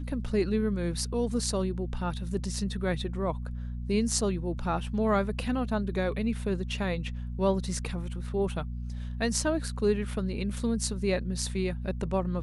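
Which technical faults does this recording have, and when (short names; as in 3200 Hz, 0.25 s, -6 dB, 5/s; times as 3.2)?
hum 60 Hz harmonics 4 -35 dBFS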